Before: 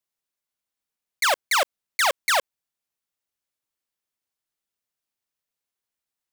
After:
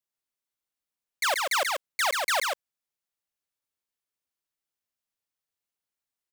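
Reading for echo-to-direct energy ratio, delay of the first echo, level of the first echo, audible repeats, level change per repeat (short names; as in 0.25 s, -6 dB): -3.5 dB, 0.135 s, -3.5 dB, 1, no steady repeat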